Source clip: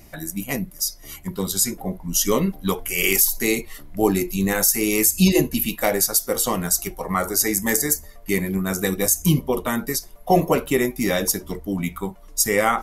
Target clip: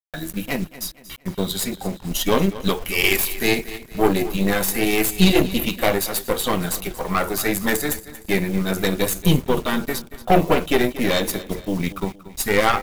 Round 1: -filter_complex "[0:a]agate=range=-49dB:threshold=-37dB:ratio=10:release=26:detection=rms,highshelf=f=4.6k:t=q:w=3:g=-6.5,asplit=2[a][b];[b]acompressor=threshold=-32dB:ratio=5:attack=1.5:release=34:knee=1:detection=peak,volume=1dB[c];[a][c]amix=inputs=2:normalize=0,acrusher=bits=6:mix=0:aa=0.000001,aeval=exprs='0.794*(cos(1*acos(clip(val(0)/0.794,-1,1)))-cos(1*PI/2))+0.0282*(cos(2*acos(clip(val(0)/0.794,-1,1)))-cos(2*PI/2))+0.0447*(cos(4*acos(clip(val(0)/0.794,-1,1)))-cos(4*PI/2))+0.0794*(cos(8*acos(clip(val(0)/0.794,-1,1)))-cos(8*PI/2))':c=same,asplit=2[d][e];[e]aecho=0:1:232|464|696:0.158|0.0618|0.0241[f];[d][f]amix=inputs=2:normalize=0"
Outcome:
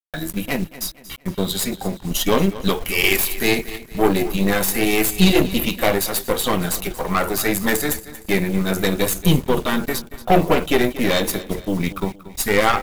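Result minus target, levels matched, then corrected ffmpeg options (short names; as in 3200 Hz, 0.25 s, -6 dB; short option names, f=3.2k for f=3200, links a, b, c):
compressor: peak gain reduction -9 dB
-filter_complex "[0:a]agate=range=-49dB:threshold=-37dB:ratio=10:release=26:detection=rms,highshelf=f=4.6k:t=q:w=3:g=-6.5,asplit=2[a][b];[b]acompressor=threshold=-43dB:ratio=5:attack=1.5:release=34:knee=1:detection=peak,volume=1dB[c];[a][c]amix=inputs=2:normalize=0,acrusher=bits=6:mix=0:aa=0.000001,aeval=exprs='0.794*(cos(1*acos(clip(val(0)/0.794,-1,1)))-cos(1*PI/2))+0.0282*(cos(2*acos(clip(val(0)/0.794,-1,1)))-cos(2*PI/2))+0.0447*(cos(4*acos(clip(val(0)/0.794,-1,1)))-cos(4*PI/2))+0.0794*(cos(8*acos(clip(val(0)/0.794,-1,1)))-cos(8*PI/2))':c=same,asplit=2[d][e];[e]aecho=0:1:232|464|696:0.158|0.0618|0.0241[f];[d][f]amix=inputs=2:normalize=0"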